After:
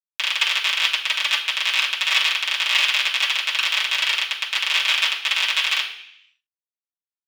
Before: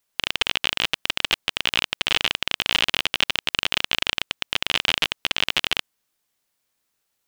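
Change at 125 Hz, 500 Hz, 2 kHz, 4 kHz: under -30 dB, -8.0 dB, +5.0 dB, +3.0 dB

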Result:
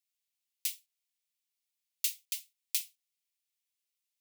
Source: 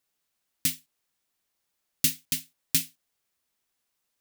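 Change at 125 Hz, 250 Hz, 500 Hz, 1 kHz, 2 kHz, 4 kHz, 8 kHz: under -40 dB, under -40 dB, under -35 dB, n/a, -9.0 dB, -7.5 dB, -7.5 dB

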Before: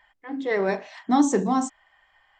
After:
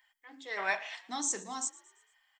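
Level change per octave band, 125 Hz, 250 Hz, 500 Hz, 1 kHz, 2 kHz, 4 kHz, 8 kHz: under -25 dB, -23.5 dB, -17.5 dB, -12.0 dB, -2.0 dB, -1.5 dB, +2.0 dB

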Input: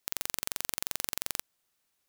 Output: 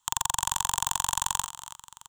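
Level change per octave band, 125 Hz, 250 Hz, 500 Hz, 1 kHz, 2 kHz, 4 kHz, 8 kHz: +10.5 dB, 0.0 dB, n/a, +18.0 dB, +4.0 dB, +7.0 dB, +10.5 dB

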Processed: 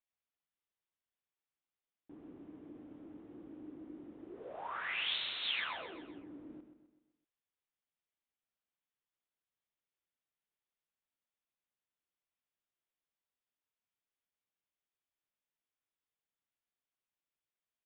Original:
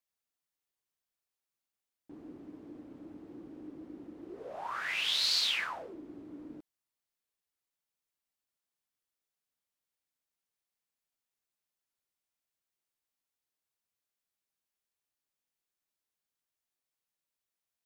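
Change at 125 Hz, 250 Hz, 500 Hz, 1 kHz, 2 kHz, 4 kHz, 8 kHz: -3.5 dB, -3.0 dB, -3.5 dB, -3.5 dB, -3.5 dB, -7.0 dB, under -30 dB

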